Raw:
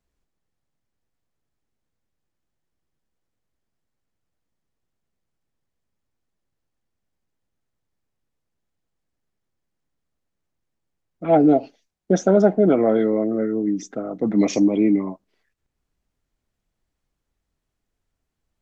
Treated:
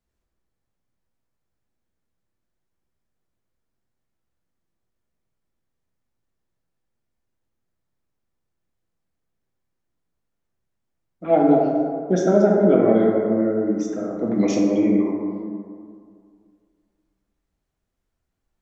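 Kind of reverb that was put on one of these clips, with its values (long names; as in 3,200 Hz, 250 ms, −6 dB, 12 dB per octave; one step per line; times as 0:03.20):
dense smooth reverb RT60 2.2 s, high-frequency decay 0.35×, DRR −2 dB
level −4 dB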